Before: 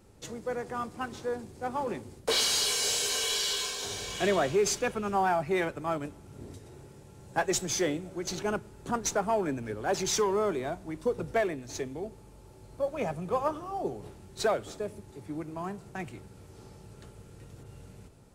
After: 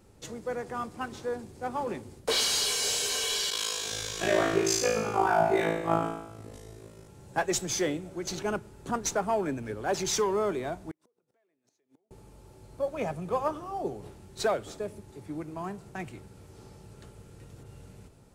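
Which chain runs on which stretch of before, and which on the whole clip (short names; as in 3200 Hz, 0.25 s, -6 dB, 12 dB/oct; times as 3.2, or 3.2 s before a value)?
3.5–7.08 HPF 62 Hz + AM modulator 53 Hz, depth 75% + flutter echo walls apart 3.1 m, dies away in 0.84 s
10.91–12.11 compressor 5:1, threshold -40 dBFS + flipped gate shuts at -37 dBFS, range -33 dB + HPF 240 Hz
whole clip: dry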